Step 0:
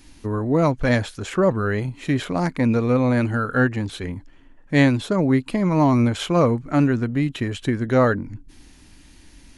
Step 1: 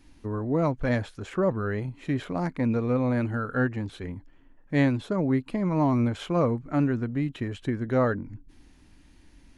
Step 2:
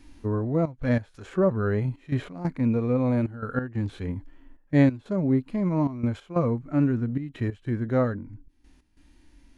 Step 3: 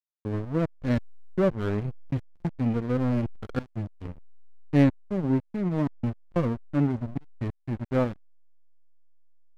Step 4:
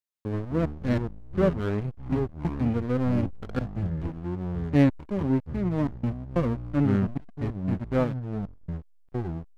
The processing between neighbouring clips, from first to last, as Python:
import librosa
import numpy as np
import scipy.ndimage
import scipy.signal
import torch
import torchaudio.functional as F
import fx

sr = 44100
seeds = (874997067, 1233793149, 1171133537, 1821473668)

y1 = fx.high_shelf(x, sr, hz=3000.0, db=-9.0)
y1 = F.gain(torch.from_numpy(y1), -6.0).numpy()
y2 = fx.rider(y1, sr, range_db=4, speed_s=0.5)
y2 = fx.hpss(y2, sr, part='percussive', gain_db=-12)
y2 = fx.step_gate(y2, sr, bpm=92, pattern='xxxx.x.x', floor_db=-12.0, edge_ms=4.5)
y2 = F.gain(torch.from_numpy(y2), 3.0).numpy()
y3 = fx.backlash(y2, sr, play_db=-21.5)
y4 = fx.echo_pitch(y3, sr, ms=150, semitones=-6, count=2, db_per_echo=-6.0)